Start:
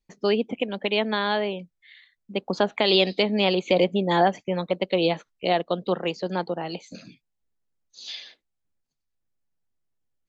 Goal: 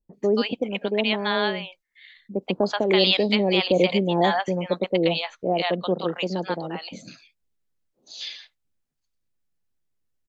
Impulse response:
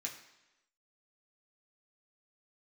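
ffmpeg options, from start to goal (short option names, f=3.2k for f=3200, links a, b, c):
-filter_complex "[0:a]acrossover=split=790[a][b];[b]adelay=130[c];[a][c]amix=inputs=2:normalize=0,volume=2dB"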